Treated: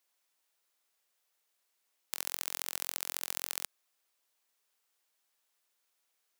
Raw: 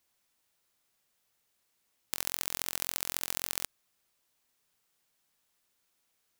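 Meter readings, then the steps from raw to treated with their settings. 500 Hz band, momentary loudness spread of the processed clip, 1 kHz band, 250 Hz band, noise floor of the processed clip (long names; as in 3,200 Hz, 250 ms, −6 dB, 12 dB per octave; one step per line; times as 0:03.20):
−4.0 dB, 4 LU, −2.5 dB, −10.0 dB, −79 dBFS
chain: high-pass filter 400 Hz 12 dB per octave
level −2.5 dB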